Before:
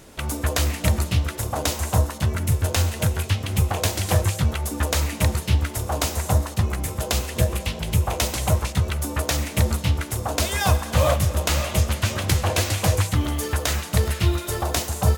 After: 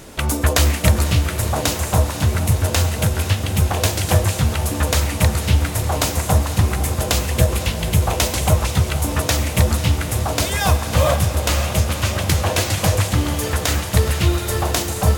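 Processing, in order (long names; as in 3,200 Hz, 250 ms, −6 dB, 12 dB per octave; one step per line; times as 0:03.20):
speech leveller 2 s
on a send: feedback delay with all-pass diffusion 526 ms, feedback 72%, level −10.5 dB
on the sum: level +3.5 dB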